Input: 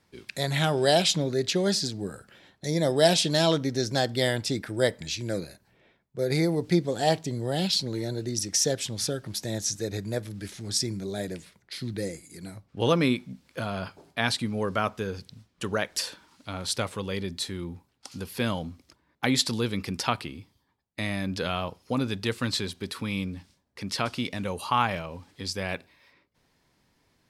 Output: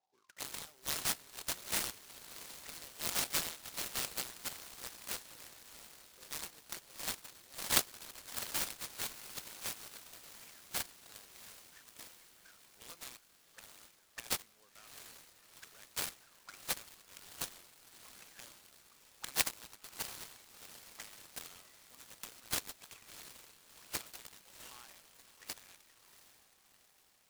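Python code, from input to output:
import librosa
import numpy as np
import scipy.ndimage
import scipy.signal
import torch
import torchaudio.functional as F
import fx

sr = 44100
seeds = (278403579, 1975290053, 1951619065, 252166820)

y = fx.auto_wah(x, sr, base_hz=750.0, top_hz=4300.0, q=18.0, full_db=-28.5, direction='up')
y = fx.high_shelf_res(y, sr, hz=5200.0, db=10.5, q=1.5)
y = fx.echo_diffused(y, sr, ms=716, feedback_pct=59, wet_db=-13.5)
y = fx.noise_mod_delay(y, sr, seeds[0], noise_hz=4100.0, depth_ms=0.073)
y = y * 10.0 ** (2.0 / 20.0)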